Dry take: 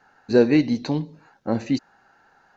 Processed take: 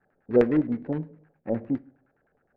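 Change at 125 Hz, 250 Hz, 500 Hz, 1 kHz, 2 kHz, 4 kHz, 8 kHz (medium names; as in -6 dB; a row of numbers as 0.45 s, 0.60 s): -5.5 dB, -5.0 dB, -3.0 dB, -6.0 dB, -9.0 dB, under -20 dB, no reading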